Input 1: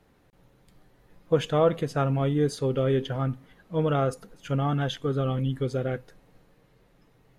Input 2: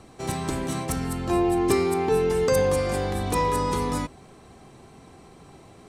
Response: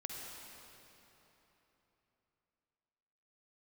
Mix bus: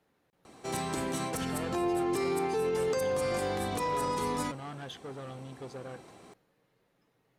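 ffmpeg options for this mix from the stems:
-filter_complex "[0:a]asoftclip=type=tanh:threshold=0.0422,volume=0.398[s0];[1:a]adelay=450,volume=0.794[s1];[s0][s1]amix=inputs=2:normalize=0,highpass=f=240:p=1,alimiter=limit=0.0708:level=0:latency=1:release=44"

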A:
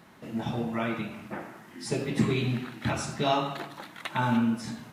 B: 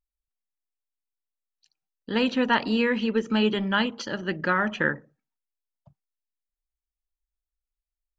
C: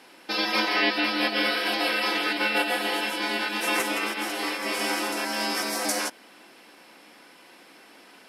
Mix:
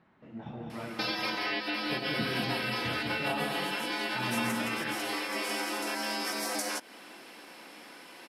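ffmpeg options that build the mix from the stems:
-filter_complex "[0:a]lowpass=2600,volume=0.299,asplit=2[s0][s1];[s1]volume=0.668[s2];[1:a]volume=0.299[s3];[2:a]adelay=700,volume=1.26[s4];[s3][s4]amix=inputs=2:normalize=0,acompressor=threshold=0.0282:ratio=5,volume=1[s5];[s2]aecho=0:1:204|408|612|816|1020:1|0.33|0.109|0.0359|0.0119[s6];[s0][s5][s6]amix=inputs=3:normalize=0"

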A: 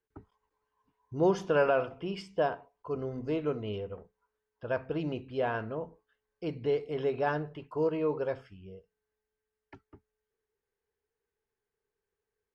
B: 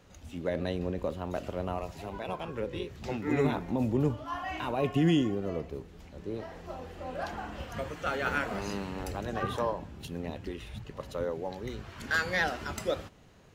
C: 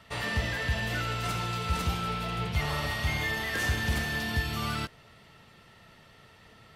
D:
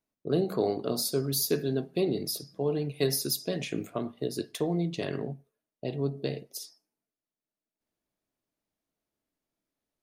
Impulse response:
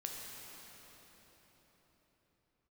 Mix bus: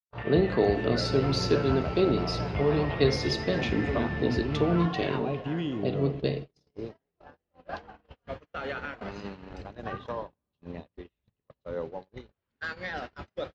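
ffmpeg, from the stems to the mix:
-filter_complex "[0:a]highpass=560,volume=0.282,asplit=2[s0][s1];[s1]volume=0.133[s2];[1:a]alimiter=level_in=1.06:limit=0.0631:level=0:latency=1:release=106,volume=0.944,adelay=500,volume=0.841,asplit=2[s3][s4];[s4]volume=0.376[s5];[2:a]afwtdn=0.0158,acrossover=split=170|820[s6][s7][s8];[s6]acompressor=threshold=0.0178:ratio=4[s9];[s7]acompressor=threshold=0.01:ratio=4[s10];[s8]acompressor=threshold=0.00708:ratio=4[s11];[s9][s10][s11]amix=inputs=3:normalize=0,volume=1.26,asplit=2[s12][s13];[s13]volume=0.112[s14];[3:a]volume=1.26,asplit=2[s15][s16];[s16]volume=0.266[s17];[4:a]atrim=start_sample=2205[s18];[s2][s5][s14][s17]amix=inputs=4:normalize=0[s19];[s19][s18]afir=irnorm=-1:irlink=0[s20];[s0][s3][s12][s15][s20]amix=inputs=5:normalize=0,lowpass=f=4900:w=0.5412,lowpass=f=4900:w=1.3066,agate=range=0.00794:threshold=0.02:ratio=16:detection=peak"

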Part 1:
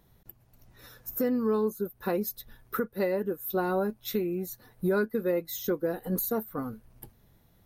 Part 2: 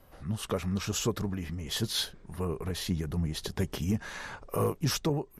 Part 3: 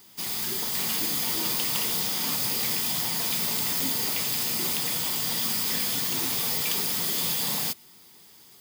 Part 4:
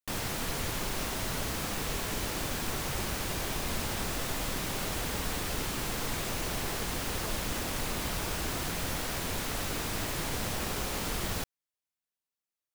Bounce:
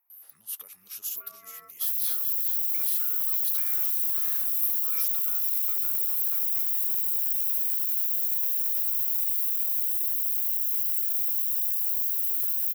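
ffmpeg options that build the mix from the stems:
-filter_complex "[0:a]highshelf=f=2100:t=q:w=3:g=-13,aeval=exprs='val(0)*sin(2*PI*900*n/s)':c=same,volume=0.422[s0];[1:a]lowshelf=f=60:g=-11.5,acompressor=threshold=0.0126:ratio=4,adelay=100,volume=1.33,asplit=2[s1][s2];[s2]volume=0.282[s3];[2:a]acrusher=samples=40:mix=1:aa=0.000001:lfo=1:lforange=24:lforate=1.1,adelay=2200,volume=0.188[s4];[3:a]asoftclip=type=hard:threshold=0.0188,adelay=1750,volume=0.447,asplit=2[s5][s6];[s6]volume=0.631[s7];[s3][s7]amix=inputs=2:normalize=0,aecho=0:1:426:1[s8];[s0][s1][s4][s5][s8]amix=inputs=5:normalize=0,aexciter=amount=4.4:drive=9.1:freq=11000,aderivative"

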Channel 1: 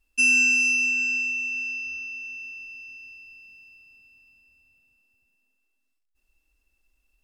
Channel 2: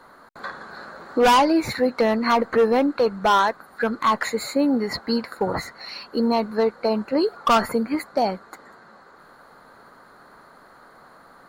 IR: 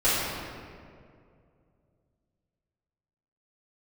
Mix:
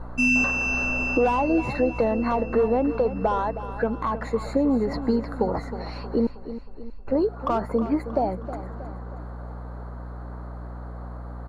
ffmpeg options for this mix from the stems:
-filter_complex "[0:a]aemphasis=mode=reproduction:type=bsi,volume=0.944,asplit=2[s0][s1];[s1]volume=0.0668[s2];[1:a]equalizer=f=780:w=0.71:g=8.5,acompressor=threshold=0.0562:ratio=2.5,aeval=exprs='val(0)+0.00708*(sin(2*PI*60*n/s)+sin(2*PI*2*60*n/s)/2+sin(2*PI*3*60*n/s)/3+sin(2*PI*4*60*n/s)/4+sin(2*PI*5*60*n/s)/5)':c=same,volume=0.422,asplit=3[s3][s4][s5];[s3]atrim=end=6.27,asetpts=PTS-STARTPTS,afade=t=out:st=6.266:d=0.004:c=hsin[s6];[s4]atrim=start=6.27:end=7.07,asetpts=PTS-STARTPTS,volume=0[s7];[s5]atrim=start=7.07,asetpts=PTS-STARTPTS,afade=t=in:d=0.004:c=hsin[s8];[s6][s7][s8]concat=n=3:v=0:a=1,asplit=3[s9][s10][s11];[s10]volume=0.237[s12];[s11]apad=whole_len=319017[s13];[s0][s13]sidechaincompress=threshold=0.0126:ratio=8:attack=16:release=567[s14];[2:a]atrim=start_sample=2205[s15];[s2][s15]afir=irnorm=-1:irlink=0[s16];[s12]aecho=0:1:316|632|948|1264|1580|1896|2212:1|0.48|0.23|0.111|0.0531|0.0255|0.0122[s17];[s14][s9][s16][s17]amix=inputs=4:normalize=0,lowpass=11000,tiltshelf=f=820:g=8.5,acontrast=25"

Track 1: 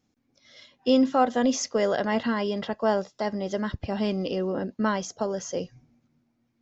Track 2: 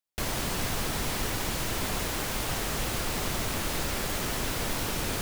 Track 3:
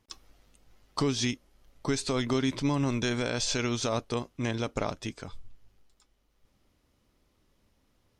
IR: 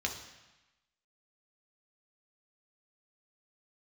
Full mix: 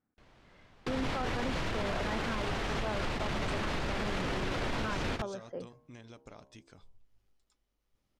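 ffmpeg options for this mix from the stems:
-filter_complex "[0:a]lowpass=f=1500:t=q:w=2.3,volume=0.266,asplit=2[s0][s1];[1:a]lowpass=3300,volume=1.12[s2];[2:a]bandreject=f=67.39:t=h:w=4,bandreject=f=134.78:t=h:w=4,bandreject=f=202.17:t=h:w=4,bandreject=f=269.56:t=h:w=4,bandreject=f=336.95:t=h:w=4,bandreject=f=404.34:t=h:w=4,bandreject=f=471.73:t=h:w=4,bandreject=f=539.12:t=h:w=4,bandreject=f=606.51:t=h:w=4,bandreject=f=673.9:t=h:w=4,bandreject=f=741.29:t=h:w=4,bandreject=f=808.68:t=h:w=4,bandreject=f=876.07:t=h:w=4,bandreject=f=943.46:t=h:w=4,bandreject=f=1010.85:t=h:w=4,bandreject=f=1078.24:t=h:w=4,acompressor=threshold=0.00501:ratio=2,adelay=1500,volume=0.335[s3];[s1]apad=whole_len=230088[s4];[s2][s4]sidechaingate=range=0.0316:threshold=0.00158:ratio=16:detection=peak[s5];[s0][s5][s3]amix=inputs=3:normalize=0,alimiter=level_in=1.12:limit=0.0631:level=0:latency=1:release=15,volume=0.891"

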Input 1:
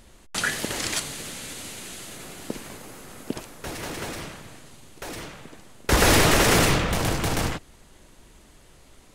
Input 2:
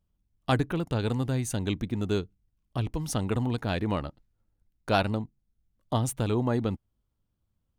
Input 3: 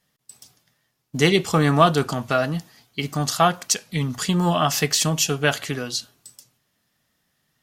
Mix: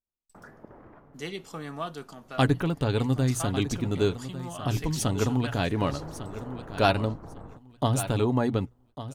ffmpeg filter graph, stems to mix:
-filter_complex "[0:a]lowpass=f=1200:w=0.5412,lowpass=f=1200:w=1.3066,acompressor=threshold=0.0708:ratio=6,volume=0.168[s0];[1:a]bandreject=f=60:t=h:w=6,bandreject=f=120:t=h:w=6,aecho=1:1:7.2:0.34,adelay=1900,volume=1.26,asplit=2[s1][s2];[s2]volume=0.224[s3];[2:a]highpass=160,volume=0.119,asplit=2[s4][s5];[s5]volume=0.075[s6];[s3][s6]amix=inputs=2:normalize=0,aecho=0:1:1150|2300|3450:1|0.2|0.04[s7];[s0][s1][s4][s7]amix=inputs=4:normalize=0,agate=range=0.0251:threshold=0.00112:ratio=16:detection=peak"

